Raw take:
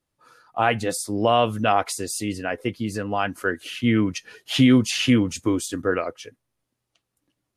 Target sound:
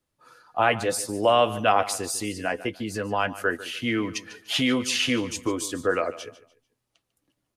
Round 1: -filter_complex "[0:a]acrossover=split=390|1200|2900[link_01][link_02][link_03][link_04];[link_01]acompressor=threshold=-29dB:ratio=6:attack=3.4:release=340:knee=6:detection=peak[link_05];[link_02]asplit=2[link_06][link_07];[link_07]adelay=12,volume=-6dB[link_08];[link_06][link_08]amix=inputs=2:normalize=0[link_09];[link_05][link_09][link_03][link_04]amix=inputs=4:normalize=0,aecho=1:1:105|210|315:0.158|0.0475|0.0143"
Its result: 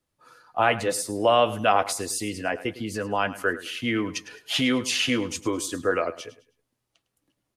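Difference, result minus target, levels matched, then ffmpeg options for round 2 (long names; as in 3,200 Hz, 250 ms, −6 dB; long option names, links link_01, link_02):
echo 42 ms early
-filter_complex "[0:a]acrossover=split=390|1200|2900[link_01][link_02][link_03][link_04];[link_01]acompressor=threshold=-29dB:ratio=6:attack=3.4:release=340:knee=6:detection=peak[link_05];[link_02]asplit=2[link_06][link_07];[link_07]adelay=12,volume=-6dB[link_08];[link_06][link_08]amix=inputs=2:normalize=0[link_09];[link_05][link_09][link_03][link_04]amix=inputs=4:normalize=0,aecho=1:1:147|294|441:0.158|0.0475|0.0143"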